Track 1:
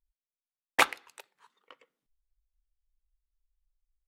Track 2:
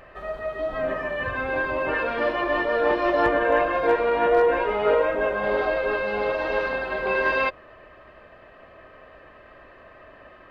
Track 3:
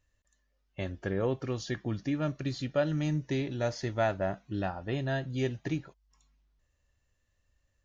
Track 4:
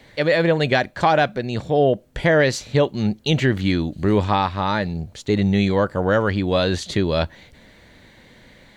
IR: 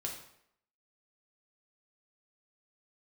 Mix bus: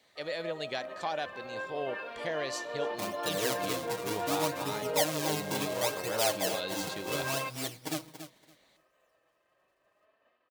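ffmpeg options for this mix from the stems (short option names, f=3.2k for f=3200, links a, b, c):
-filter_complex "[1:a]agate=range=-33dB:threshold=-40dB:ratio=3:detection=peak,flanger=delay=3.9:depth=2.3:regen=65:speed=0.38:shape=triangular,volume=-1.5dB[a];[2:a]acrusher=samples=42:mix=1:aa=0.000001:lfo=1:lforange=67.2:lforate=0.7,aecho=1:1:6.4:0.94,adelay=2200,volume=3dB,asplit=3[b][c][d];[c]volume=-13dB[e];[d]volume=-9.5dB[f];[3:a]volume=-9dB,asplit=2[g][h];[h]volume=-23.5dB[i];[4:a]atrim=start_sample=2205[j];[e][j]afir=irnorm=-1:irlink=0[k];[f][i]amix=inputs=2:normalize=0,aecho=0:1:282|564|846:1|0.16|0.0256[l];[a][b][g][k][l]amix=inputs=5:normalize=0,highpass=f=1.2k:p=1,equalizer=f=1.7k:w=0.83:g=-9"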